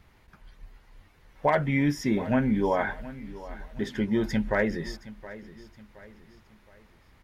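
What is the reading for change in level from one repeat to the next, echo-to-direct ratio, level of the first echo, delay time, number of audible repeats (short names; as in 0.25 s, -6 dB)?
-7.5 dB, -16.0 dB, -17.0 dB, 0.719 s, 3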